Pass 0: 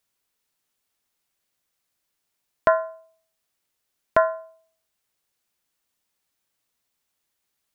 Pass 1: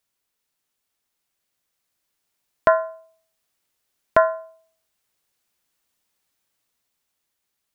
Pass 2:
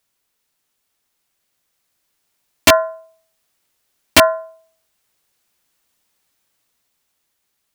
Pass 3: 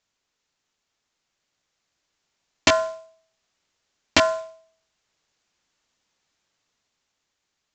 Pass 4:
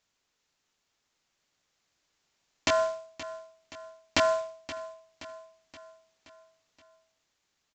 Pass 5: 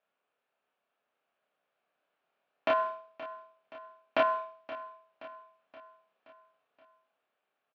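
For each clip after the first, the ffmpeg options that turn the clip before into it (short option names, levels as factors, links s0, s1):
-af "dynaudnorm=f=350:g=11:m=3.76,volume=0.891"
-af "aeval=exprs='(mod(2.37*val(0)+1,2)-1)/2.37':c=same,volume=2.11"
-af "acompressor=threshold=0.282:ratio=6,aresample=16000,acrusher=bits=4:mode=log:mix=0:aa=0.000001,aresample=44100,volume=0.75"
-af "alimiter=limit=0.237:level=0:latency=1:release=154,aecho=1:1:524|1048|1572|2096|2620:0.178|0.0942|0.05|0.0265|0.014"
-filter_complex "[0:a]highpass=320,equalizer=f=320:t=q:w=4:g=-7,equalizer=f=650:t=q:w=4:g=5,equalizer=f=940:t=q:w=4:g=-4,equalizer=f=2000:t=q:w=4:g=-10,lowpass=f=2400:w=0.5412,lowpass=f=2400:w=1.3066,asplit=2[s0][s1];[s1]adelay=30,volume=0.794[s2];[s0][s2]amix=inputs=2:normalize=0"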